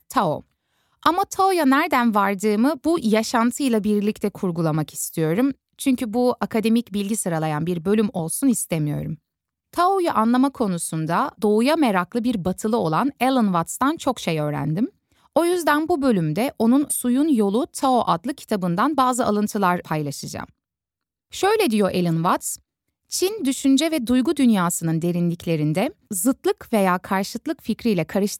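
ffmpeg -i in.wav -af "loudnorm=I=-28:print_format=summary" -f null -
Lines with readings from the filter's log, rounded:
Input Integrated:    -21.3 LUFS
Input True Peak:      -3.2 dBTP
Input LRA:             2.5 LU
Input Threshold:     -31.5 LUFS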